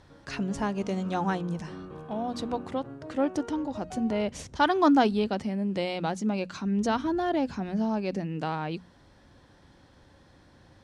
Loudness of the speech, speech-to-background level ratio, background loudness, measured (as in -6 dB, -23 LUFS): -29.0 LUFS, 14.5 dB, -43.5 LUFS